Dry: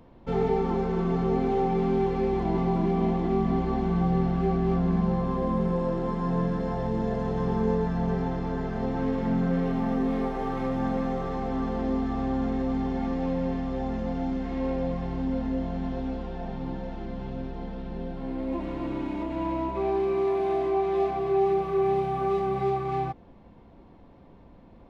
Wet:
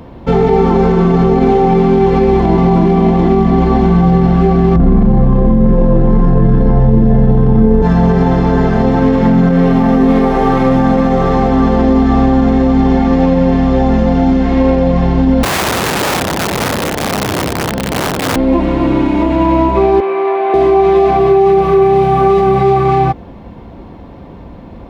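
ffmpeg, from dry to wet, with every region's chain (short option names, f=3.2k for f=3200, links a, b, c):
-filter_complex "[0:a]asettb=1/sr,asplit=3[a][b][c];[a]atrim=end=4.764[d];[b]atrim=start=4.76:end=7.82,asetpts=PTS-STARTPTS,afade=t=in:d=0.004:c=qsin,afade=t=out:st=3.056:d=0.004:c=qsin,aemphasis=mode=reproduction:type=riaa,asplit=2[e][f];[f]adelay=37,volume=-3dB[g];[e][g]amix=inputs=2:normalize=0,atrim=end_sample=134946[h];[c]atrim=start=7.816[i];[d][h]acrossfade=d=0.004:c1=hsin:c2=qsin[j];[j][i]acrossfade=d=0.004:c1=qsin:c2=hsin,asettb=1/sr,asplit=3[k][l][m];[k]atrim=end=15.434[n];[l]atrim=start=15.43:end=18.36,asetpts=PTS-STARTPTS,afade=t=in:d=0.004:c=qsin,afade=t=out:st=2.926:d=0.004:c=qsin,aeval=exprs='(mod(28.2*val(0)+1,2)-1)/28.2':c=same,highpass=74[o];[m]atrim=start=18.356[p];[n][o]acrossfade=d=0.004:c1=hsin:c2=qsin[q];[q][p]acrossfade=d=0.004:c1=qsin:c2=hsin,asettb=1/sr,asplit=3[r][s][t];[r]atrim=end=20.004[u];[s]atrim=start=20:end=20.54,asetpts=PTS-STARTPTS,afade=t=in:d=0.004:c=qsin,afade=t=out:st=0.536:d=0.004:c=qsin,highpass=690,lowpass=2.3k,asplit=2[v][w];[w]adelay=15,volume=-11dB[x];[v][x]amix=inputs=2:normalize=0,atrim=end_sample=23814[y];[t]atrim=start=20.536[z];[u][y]acrossfade=d=0.004:c1=hsin:c2=qsin[aa];[aa][z]acrossfade=d=0.004:c1=qsin:c2=hsin,highpass=46,lowshelf=f=66:g=7,alimiter=level_in=20dB:limit=-1dB:release=50:level=0:latency=1,volume=-1dB"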